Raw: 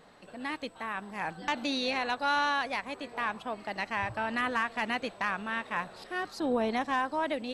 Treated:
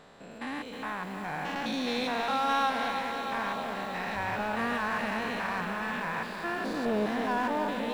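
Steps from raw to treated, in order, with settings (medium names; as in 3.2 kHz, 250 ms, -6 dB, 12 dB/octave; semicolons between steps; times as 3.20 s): spectrogram pixelated in time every 200 ms; tape speed -5%; in parallel at -3.5 dB: hard clipper -36.5 dBFS, distortion -6 dB; on the sum: bit-crushed delay 314 ms, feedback 80%, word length 9-bit, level -8 dB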